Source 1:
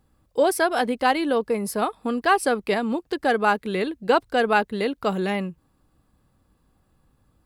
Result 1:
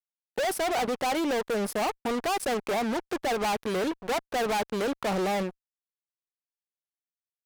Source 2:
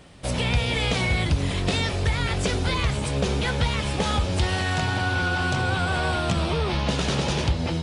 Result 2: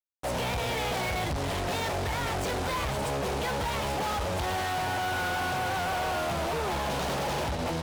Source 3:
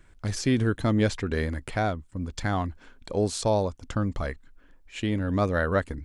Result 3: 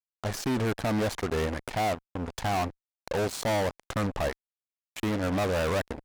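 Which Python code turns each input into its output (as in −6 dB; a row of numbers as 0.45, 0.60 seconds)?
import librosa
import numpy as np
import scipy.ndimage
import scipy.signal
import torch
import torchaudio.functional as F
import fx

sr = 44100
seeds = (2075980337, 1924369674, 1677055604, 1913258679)

p1 = fx.peak_eq(x, sr, hz=760.0, db=13.5, octaves=1.7)
p2 = fx.level_steps(p1, sr, step_db=12)
p3 = p1 + F.gain(torch.from_numpy(p2), 1.0).numpy()
p4 = fx.fuzz(p3, sr, gain_db=24.0, gate_db=-27.0)
y = p4 * 10.0 ** (-30 / 20.0) / np.sqrt(np.mean(np.square(p4)))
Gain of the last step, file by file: −12.0, −14.5, −11.0 decibels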